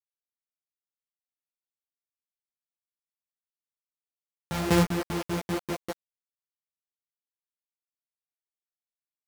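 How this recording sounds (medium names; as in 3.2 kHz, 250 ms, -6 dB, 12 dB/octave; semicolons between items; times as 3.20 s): a buzz of ramps at a fixed pitch in blocks of 256 samples; tremolo saw down 5.1 Hz, depth 90%; a quantiser's noise floor 6-bit, dither none; a shimmering, thickened sound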